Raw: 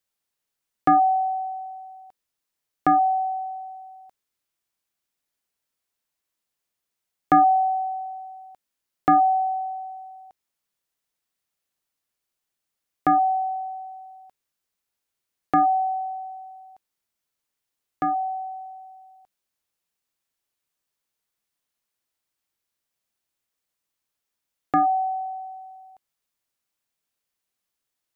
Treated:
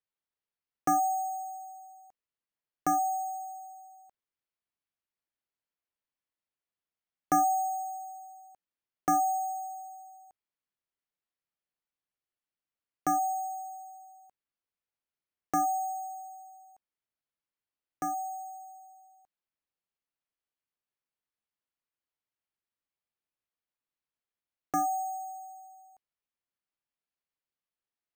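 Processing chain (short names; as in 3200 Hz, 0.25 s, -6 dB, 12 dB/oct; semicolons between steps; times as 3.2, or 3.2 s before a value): careless resampling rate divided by 6×, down filtered, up hold; gain -9 dB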